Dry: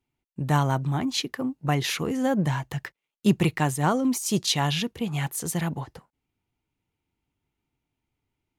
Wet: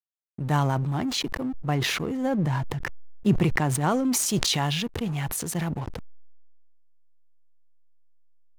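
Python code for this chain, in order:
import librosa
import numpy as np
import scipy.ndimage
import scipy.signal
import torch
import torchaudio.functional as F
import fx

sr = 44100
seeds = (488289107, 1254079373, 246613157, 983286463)

y = fx.high_shelf(x, sr, hz=2000.0, db=-6.0, at=(1.68, 3.81))
y = fx.backlash(y, sr, play_db=-35.0)
y = fx.sustainer(y, sr, db_per_s=23.0)
y = F.gain(torch.from_numpy(y), -1.5).numpy()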